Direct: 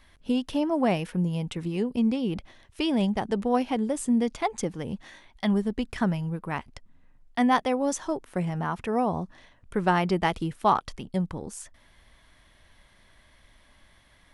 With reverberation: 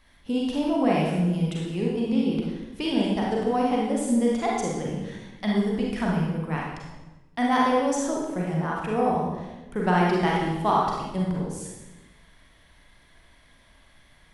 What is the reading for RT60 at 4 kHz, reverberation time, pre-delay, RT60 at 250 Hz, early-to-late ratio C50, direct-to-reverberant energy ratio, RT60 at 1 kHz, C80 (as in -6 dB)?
0.90 s, 1.1 s, 33 ms, 1.4 s, -0.5 dB, -3.5 dB, 1.0 s, 3.0 dB